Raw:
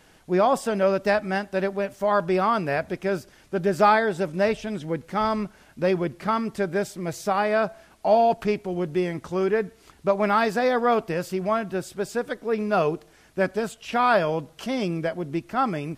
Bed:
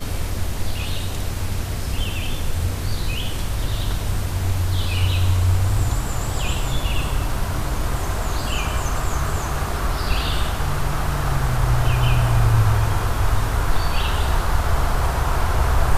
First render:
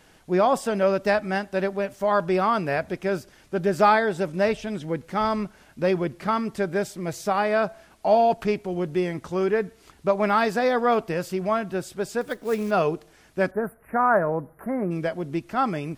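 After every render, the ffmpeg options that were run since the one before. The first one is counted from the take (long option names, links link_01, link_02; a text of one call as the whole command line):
ffmpeg -i in.wav -filter_complex "[0:a]asettb=1/sr,asplit=3[link_01][link_02][link_03];[link_01]atrim=end=12.214[link_04];[link_02]atrim=start=12.21:end=12.71,asetpts=PTS-STARTPTS,afade=type=in:duration=0.004:curve=qsin,afade=type=out:start_time=0.496:duration=0.004:curve=qsin,acrusher=bits=5:mode=log:mix=0:aa=0.000001[link_05];[link_03]atrim=start=12.706[link_06];[link_04][link_05]acrossfade=duration=0.004:curve1=hsin:curve2=qsin[link_07];[link_07][link_06]acrossfade=duration=0.004:curve1=qsin:curve2=hsin,asplit=3[link_08][link_09][link_10];[link_08]afade=type=out:start_time=13.5:duration=0.02[link_11];[link_09]asuperstop=centerf=4700:order=12:qfactor=0.56,afade=type=in:start_time=13.5:duration=0.02,afade=type=out:start_time=14.9:duration=0.02[link_12];[link_10]afade=type=in:start_time=14.9:duration=0.02[link_13];[link_11][link_12][link_13]amix=inputs=3:normalize=0" out.wav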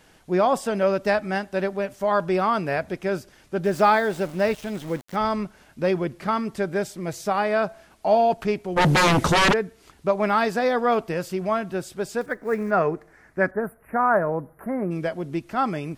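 ffmpeg -i in.wav -filter_complex "[0:a]asettb=1/sr,asplit=3[link_01][link_02][link_03];[link_01]atrim=end=3.654[link_04];[link_02]atrim=start=3.65:end=5.16,asetpts=PTS-STARTPTS,afade=type=in:duration=0.004:curve=qsin,afade=type=out:start_time=1.506:duration=0.004:curve=qsin,aeval=exprs='val(0)*gte(abs(val(0)),0.0141)':channel_layout=same[link_05];[link_03]atrim=start=5.156[link_06];[link_04][link_05]acrossfade=duration=0.004:curve1=hsin:curve2=qsin[link_07];[link_07][link_06]acrossfade=duration=0.004:curve1=qsin:curve2=hsin,asplit=3[link_08][link_09][link_10];[link_08]afade=type=out:start_time=8.76:duration=0.02[link_11];[link_09]aeval=exprs='0.2*sin(PI/2*6.31*val(0)/0.2)':channel_layout=same,afade=type=in:start_time=8.76:duration=0.02,afade=type=out:start_time=9.52:duration=0.02[link_12];[link_10]afade=type=in:start_time=9.52:duration=0.02[link_13];[link_11][link_12][link_13]amix=inputs=3:normalize=0,asettb=1/sr,asplit=3[link_14][link_15][link_16];[link_14]atrim=end=12.264[link_17];[link_15]atrim=start=12.26:end=13.6,asetpts=PTS-STARTPTS,afade=type=in:duration=0.004:curve=qsin,afade=type=out:start_time=1.336:duration=0.004:curve=qsin,highshelf=frequency=2400:width_type=q:width=3:gain=-8[link_18];[link_16]atrim=start=13.596[link_19];[link_17][link_18]acrossfade=duration=0.004:curve1=hsin:curve2=qsin[link_20];[link_20][link_19]acrossfade=duration=0.004:curve1=qsin:curve2=hsin" out.wav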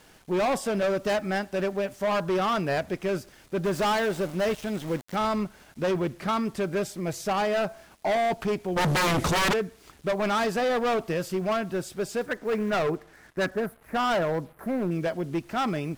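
ffmpeg -i in.wav -af "volume=22dB,asoftclip=hard,volume=-22dB,acrusher=bits=8:mix=0:aa=0.5" out.wav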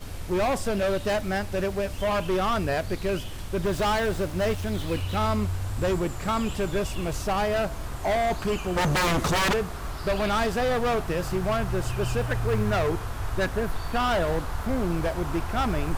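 ffmpeg -i in.wav -i bed.wav -filter_complex "[1:a]volume=-11.5dB[link_01];[0:a][link_01]amix=inputs=2:normalize=0" out.wav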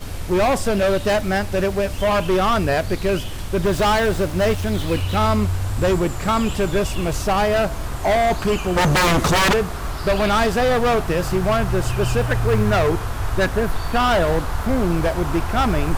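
ffmpeg -i in.wav -af "volume=7dB" out.wav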